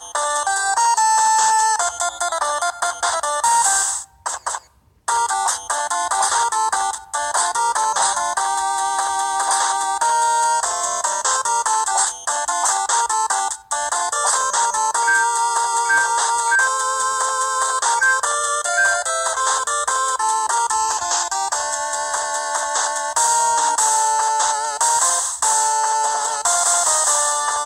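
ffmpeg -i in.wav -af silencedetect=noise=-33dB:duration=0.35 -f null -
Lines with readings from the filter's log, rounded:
silence_start: 4.58
silence_end: 5.08 | silence_duration: 0.50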